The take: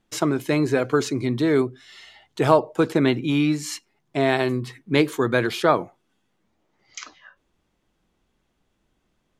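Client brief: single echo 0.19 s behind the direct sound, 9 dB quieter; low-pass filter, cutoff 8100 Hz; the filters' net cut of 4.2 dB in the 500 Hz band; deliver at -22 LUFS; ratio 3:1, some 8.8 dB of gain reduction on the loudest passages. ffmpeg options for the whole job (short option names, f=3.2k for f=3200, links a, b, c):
-af "lowpass=8.1k,equalizer=f=500:t=o:g=-5.5,acompressor=threshold=-25dB:ratio=3,aecho=1:1:190:0.355,volume=7.5dB"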